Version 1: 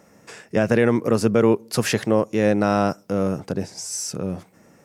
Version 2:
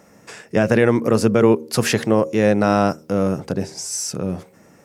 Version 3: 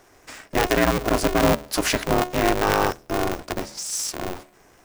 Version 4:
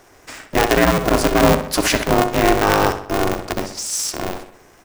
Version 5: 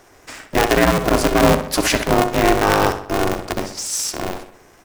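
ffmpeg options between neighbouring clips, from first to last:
ffmpeg -i in.wav -af "bandreject=frequency=77.83:width_type=h:width=4,bandreject=frequency=155.66:width_type=h:width=4,bandreject=frequency=233.49:width_type=h:width=4,bandreject=frequency=311.32:width_type=h:width=4,bandreject=frequency=389.15:width_type=h:width=4,bandreject=frequency=466.98:width_type=h:width=4,bandreject=frequency=544.81:width_type=h:width=4,volume=3dB" out.wav
ffmpeg -i in.wav -af "lowshelf=frequency=320:gain=-7,aeval=exprs='val(0)*sgn(sin(2*PI*180*n/s))':channel_layout=same,volume=-1.5dB" out.wav
ffmpeg -i in.wav -filter_complex "[0:a]asplit=2[link_01][link_02];[link_02]adelay=64,lowpass=frequency=4800:poles=1,volume=-10dB,asplit=2[link_03][link_04];[link_04]adelay=64,lowpass=frequency=4800:poles=1,volume=0.51,asplit=2[link_05][link_06];[link_06]adelay=64,lowpass=frequency=4800:poles=1,volume=0.51,asplit=2[link_07][link_08];[link_08]adelay=64,lowpass=frequency=4800:poles=1,volume=0.51,asplit=2[link_09][link_10];[link_10]adelay=64,lowpass=frequency=4800:poles=1,volume=0.51,asplit=2[link_11][link_12];[link_12]adelay=64,lowpass=frequency=4800:poles=1,volume=0.51[link_13];[link_01][link_03][link_05][link_07][link_09][link_11][link_13]amix=inputs=7:normalize=0,volume=4.5dB" out.wav
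ffmpeg -i in.wav -ar 48000 -c:a aac -b:a 128k out.aac

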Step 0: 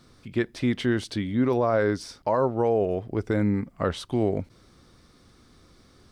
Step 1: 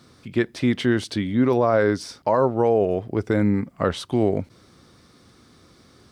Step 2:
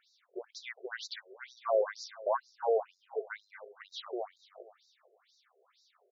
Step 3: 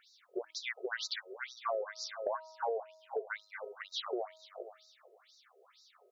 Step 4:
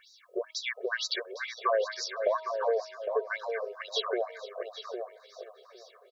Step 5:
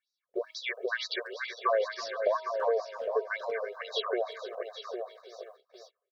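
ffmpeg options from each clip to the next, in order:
ffmpeg -i in.wav -af "highpass=83,volume=4dB" out.wav
ffmpeg -i in.wav -filter_complex "[0:a]asplit=2[link_01][link_02];[link_02]aecho=0:1:227|454|681|908:0.251|0.0955|0.0363|0.0138[link_03];[link_01][link_03]amix=inputs=2:normalize=0,afftfilt=real='re*between(b*sr/1024,490*pow(5300/490,0.5+0.5*sin(2*PI*2.1*pts/sr))/1.41,490*pow(5300/490,0.5+0.5*sin(2*PI*2.1*pts/sr))*1.41)':imag='im*between(b*sr/1024,490*pow(5300/490,0.5+0.5*sin(2*PI*2.1*pts/sr))/1.41,490*pow(5300/490,0.5+0.5*sin(2*PI*2.1*pts/sr))*1.41)':win_size=1024:overlap=0.75,volume=-7dB" out.wav
ffmpeg -i in.wav -af "bandreject=frequency=317.2:width_type=h:width=4,bandreject=frequency=634.4:width_type=h:width=4,bandreject=frequency=951.6:width_type=h:width=4,bandreject=frequency=1268.8:width_type=h:width=4,acompressor=threshold=-38dB:ratio=8,volume=5.5dB" out.wav
ffmpeg -i in.wav -filter_complex "[0:a]aecho=1:1:1.8:0.8,asplit=2[link_01][link_02];[link_02]adelay=808,lowpass=frequency=2200:poles=1,volume=-6.5dB,asplit=2[link_03][link_04];[link_04]adelay=808,lowpass=frequency=2200:poles=1,volume=0.16,asplit=2[link_05][link_06];[link_06]adelay=808,lowpass=frequency=2200:poles=1,volume=0.16[link_07];[link_03][link_05][link_07]amix=inputs=3:normalize=0[link_08];[link_01][link_08]amix=inputs=2:normalize=0,volume=4dB" out.wav
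ffmpeg -i in.wav -filter_complex "[0:a]asplit=2[link_01][link_02];[link_02]adelay=330,highpass=300,lowpass=3400,asoftclip=type=hard:threshold=-22.5dB,volume=-13dB[link_03];[link_01][link_03]amix=inputs=2:normalize=0,acrossover=split=4700[link_04][link_05];[link_05]acompressor=threshold=-55dB:ratio=4:attack=1:release=60[link_06];[link_04][link_06]amix=inputs=2:normalize=0,agate=range=-29dB:threshold=-51dB:ratio=16:detection=peak" out.wav

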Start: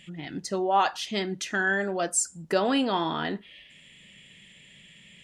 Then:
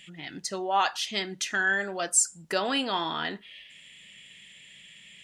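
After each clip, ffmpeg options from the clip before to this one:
ffmpeg -i in.wav -af "tiltshelf=frequency=900:gain=-5.5,volume=-2dB" out.wav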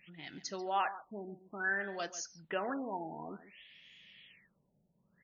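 ffmpeg -i in.wav -af "aecho=1:1:140:0.178,afftfilt=real='re*lt(b*sr/1024,890*pow(7000/890,0.5+0.5*sin(2*PI*0.57*pts/sr)))':imag='im*lt(b*sr/1024,890*pow(7000/890,0.5+0.5*sin(2*PI*0.57*pts/sr)))':win_size=1024:overlap=0.75,volume=-8dB" out.wav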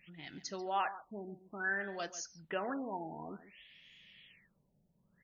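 ffmpeg -i in.wav -af "lowshelf=frequency=94:gain=8.5,volume=-1.5dB" out.wav

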